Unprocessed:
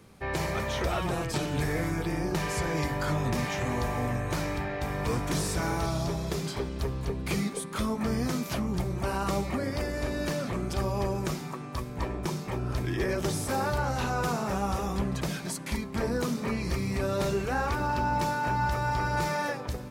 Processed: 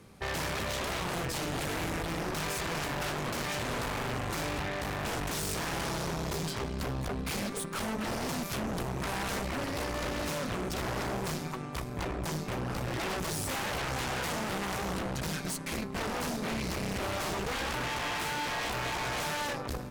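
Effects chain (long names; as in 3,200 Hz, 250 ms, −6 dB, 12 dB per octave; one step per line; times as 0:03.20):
wave folding −29.5 dBFS
harmonic generator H 2 −8 dB, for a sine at −29.5 dBFS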